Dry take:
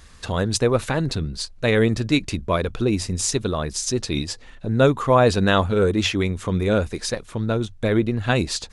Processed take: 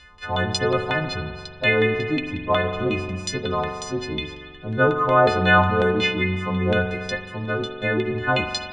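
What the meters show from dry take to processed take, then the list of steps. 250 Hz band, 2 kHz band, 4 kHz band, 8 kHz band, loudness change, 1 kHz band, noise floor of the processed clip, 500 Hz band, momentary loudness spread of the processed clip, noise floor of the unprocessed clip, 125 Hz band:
-3.5 dB, +6.0 dB, -1.0 dB, -10.5 dB, -0.5 dB, +3.0 dB, -41 dBFS, -1.0 dB, 12 LU, -44 dBFS, -3.5 dB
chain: frequency quantiser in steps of 3 st; LFO low-pass saw down 5.5 Hz 710–3400 Hz; spring tank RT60 1.9 s, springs 43 ms, chirp 45 ms, DRR 5.5 dB; gain -4.5 dB

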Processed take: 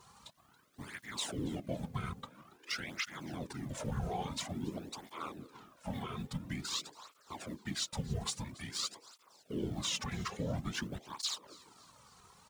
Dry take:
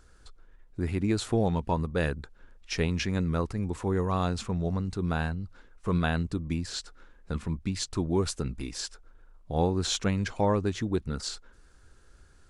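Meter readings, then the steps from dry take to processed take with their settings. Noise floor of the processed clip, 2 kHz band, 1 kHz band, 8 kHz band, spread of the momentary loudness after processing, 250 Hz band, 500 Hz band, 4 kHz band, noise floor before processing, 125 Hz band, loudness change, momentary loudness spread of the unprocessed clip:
-67 dBFS, -7.0 dB, -9.5 dB, -3.0 dB, 18 LU, -11.5 dB, -14.5 dB, -2.5 dB, -57 dBFS, -12.0 dB, -9.5 dB, 10 LU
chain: G.711 law mismatch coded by mu; HPF 330 Hz 12 dB/oct; limiter -24 dBFS, peak gain reduction 11.5 dB; frequency shift -390 Hz; requantised 12-bit, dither none; whisperiser; frequency-shifting echo 0.279 s, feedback 47%, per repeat +130 Hz, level -21 dB; tape flanging out of phase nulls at 0.49 Hz, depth 3.6 ms; gain +1 dB

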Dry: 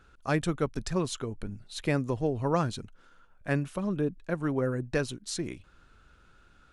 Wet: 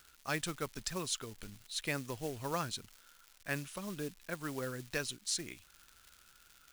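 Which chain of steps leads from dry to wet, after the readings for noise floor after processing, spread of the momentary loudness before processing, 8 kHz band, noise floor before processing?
-64 dBFS, 11 LU, +2.0 dB, -60 dBFS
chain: companded quantiser 6-bit; crackle 170/s -43 dBFS; tilt shelf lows -7.5 dB, about 1300 Hz; gain -5.5 dB

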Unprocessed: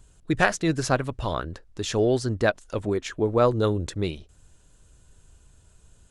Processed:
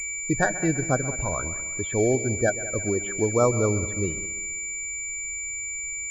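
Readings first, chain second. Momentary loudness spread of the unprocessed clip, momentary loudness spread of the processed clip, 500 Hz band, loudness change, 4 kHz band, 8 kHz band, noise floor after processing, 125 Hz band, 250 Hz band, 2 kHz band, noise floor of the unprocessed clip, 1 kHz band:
10 LU, 7 LU, -0.5 dB, 0.0 dB, under -10 dB, +14.0 dB, -32 dBFS, 0.0 dB, 0.0 dB, +1.5 dB, -58 dBFS, -2.0 dB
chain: whine 2300 Hz -29 dBFS; loudest bins only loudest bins 32; air absorption 220 m; multi-head echo 66 ms, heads second and third, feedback 47%, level -16.5 dB; pulse-width modulation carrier 7100 Hz

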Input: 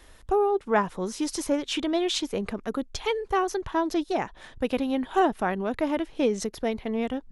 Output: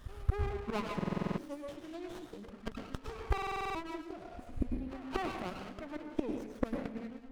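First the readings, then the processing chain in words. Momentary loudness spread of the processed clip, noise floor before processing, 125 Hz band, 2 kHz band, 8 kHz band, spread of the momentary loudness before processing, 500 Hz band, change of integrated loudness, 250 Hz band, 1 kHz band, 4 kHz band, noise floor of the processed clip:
9 LU, -52 dBFS, +1.5 dB, -11.0 dB, -21.0 dB, 7 LU, -15.0 dB, -12.0 dB, -11.5 dB, -13.0 dB, -16.5 dB, -52 dBFS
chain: per-bin expansion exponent 1.5; flipped gate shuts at -29 dBFS, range -29 dB; pre-echo 0.229 s -16 dB; spectral repair 4.19–4.74, 410–6100 Hz both; band shelf 1500 Hz +11.5 dB 1.1 oct; plate-style reverb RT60 0.67 s, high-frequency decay 0.75×, pre-delay 90 ms, DRR 2.5 dB; stuck buffer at 0.96/3.33, samples 2048, times 8; running maximum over 17 samples; gain +12.5 dB

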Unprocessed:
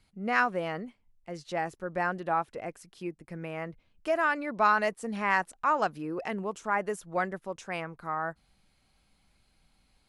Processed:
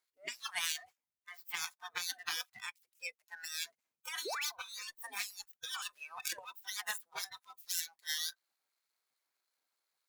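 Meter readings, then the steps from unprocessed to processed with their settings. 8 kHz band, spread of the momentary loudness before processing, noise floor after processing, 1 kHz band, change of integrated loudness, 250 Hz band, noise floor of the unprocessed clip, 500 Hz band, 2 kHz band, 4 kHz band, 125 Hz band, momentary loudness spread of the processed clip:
+11.0 dB, 14 LU, under -85 dBFS, -19.5 dB, -9.0 dB, -31.0 dB, -70 dBFS, -22.5 dB, -10.5 dB, +8.5 dB, under -30 dB, 9 LU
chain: median filter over 15 samples; spectral gate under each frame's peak -20 dB weak; added harmonics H 6 -14 dB, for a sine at -23.5 dBFS; tilt +4.5 dB/oct; negative-ratio compressor -41 dBFS, ratio -1; painted sound rise, 4.25–4.46, 330–4300 Hz -43 dBFS; spectral noise reduction 19 dB; gain +3.5 dB

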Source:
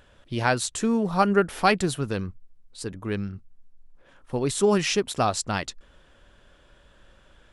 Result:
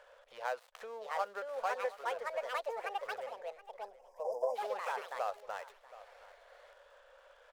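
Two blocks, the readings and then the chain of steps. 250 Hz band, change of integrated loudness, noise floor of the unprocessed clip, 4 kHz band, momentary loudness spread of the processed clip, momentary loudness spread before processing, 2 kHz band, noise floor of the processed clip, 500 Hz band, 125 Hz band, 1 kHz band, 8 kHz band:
under -35 dB, -14.5 dB, -57 dBFS, -19.0 dB, 19 LU, 15 LU, -12.0 dB, -63 dBFS, -12.0 dB, under -40 dB, -10.0 dB, -26.5 dB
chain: switching dead time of 0.12 ms; tilt -3.5 dB/oct; echoes that change speed 0.756 s, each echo +4 st, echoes 3; spectral delete 3.82–4.56, 1100–4800 Hz; compressor 3:1, threshold -33 dBFS, peak gain reduction 17 dB; elliptic high-pass 500 Hz, stop band 40 dB; echo 0.724 s -18 dB; gain +1 dB

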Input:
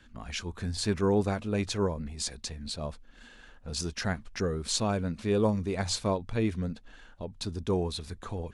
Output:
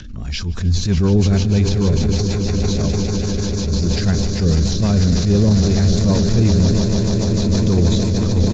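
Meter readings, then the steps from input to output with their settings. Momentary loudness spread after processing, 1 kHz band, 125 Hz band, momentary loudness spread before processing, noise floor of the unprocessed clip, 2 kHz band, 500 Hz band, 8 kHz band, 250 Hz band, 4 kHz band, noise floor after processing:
6 LU, +4.5 dB, +19.5 dB, 12 LU, -54 dBFS, +7.0 dB, +8.5 dB, +10.0 dB, +15.5 dB, +10.5 dB, -24 dBFS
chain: nonlinear frequency compression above 3700 Hz 1.5:1; upward compressor, threshold -42 dBFS; on a send: swelling echo 0.148 s, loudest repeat 8, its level -12 dB; on the sum: rotary speaker horn 6.3 Hz; downsampling 16000 Hz; tone controls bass +14 dB, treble +12 dB; de-esser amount 85%; transient shaper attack -9 dB, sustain +5 dB; maximiser +12 dB; gain -4.5 dB; AAC 64 kbps 22050 Hz

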